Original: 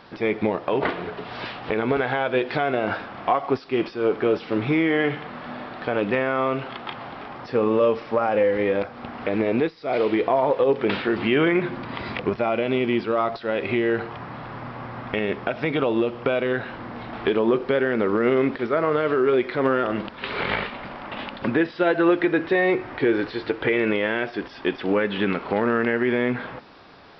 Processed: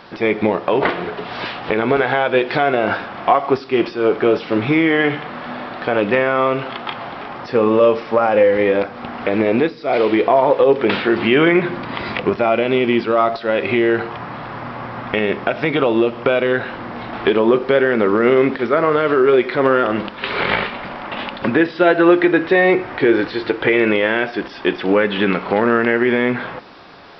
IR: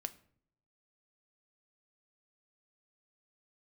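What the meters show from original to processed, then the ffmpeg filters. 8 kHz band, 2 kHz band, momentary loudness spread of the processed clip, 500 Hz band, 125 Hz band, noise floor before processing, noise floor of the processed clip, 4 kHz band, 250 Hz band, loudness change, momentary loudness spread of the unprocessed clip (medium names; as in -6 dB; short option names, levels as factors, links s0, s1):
no reading, +7.0 dB, 13 LU, +6.5 dB, +4.5 dB, -42 dBFS, -34 dBFS, +7.0 dB, +6.0 dB, +6.5 dB, 13 LU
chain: -filter_complex "[0:a]asplit=2[s0][s1];[1:a]atrim=start_sample=2205,lowshelf=f=170:g=-9[s2];[s1][s2]afir=irnorm=-1:irlink=0,volume=1.68[s3];[s0][s3]amix=inputs=2:normalize=0"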